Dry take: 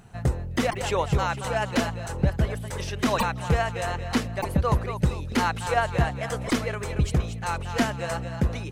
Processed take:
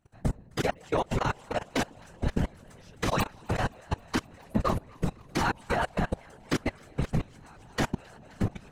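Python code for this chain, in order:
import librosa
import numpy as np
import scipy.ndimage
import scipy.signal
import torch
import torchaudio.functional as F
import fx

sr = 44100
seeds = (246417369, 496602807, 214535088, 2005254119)

y = fx.echo_alternate(x, sr, ms=131, hz=850.0, feedback_pct=86, wet_db=-7)
y = fx.level_steps(y, sr, step_db=24)
y = fx.hpss(y, sr, part='harmonic', gain_db=-4)
y = fx.whisperise(y, sr, seeds[0])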